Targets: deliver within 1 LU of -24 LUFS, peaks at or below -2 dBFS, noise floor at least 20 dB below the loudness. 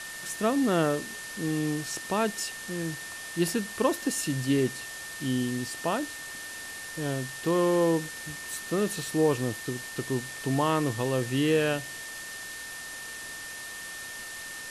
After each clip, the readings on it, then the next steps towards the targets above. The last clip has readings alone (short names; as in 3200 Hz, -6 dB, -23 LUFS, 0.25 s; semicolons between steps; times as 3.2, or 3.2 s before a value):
steady tone 1800 Hz; tone level -40 dBFS; noise floor -40 dBFS; noise floor target -50 dBFS; loudness -29.5 LUFS; peak -12.5 dBFS; loudness target -24.0 LUFS
-> notch 1800 Hz, Q 30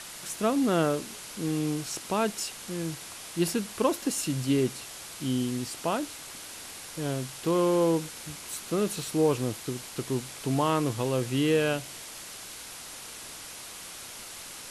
steady tone none; noise floor -43 dBFS; noise floor target -50 dBFS
-> noise print and reduce 7 dB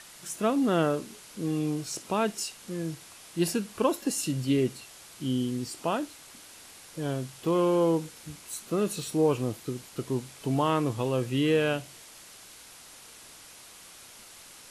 noise floor -50 dBFS; loudness -29.0 LUFS; peak -12.0 dBFS; loudness target -24.0 LUFS
-> gain +5 dB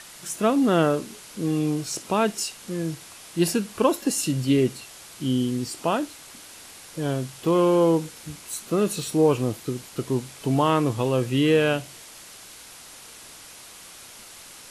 loudness -24.0 LUFS; peak -7.0 dBFS; noise floor -45 dBFS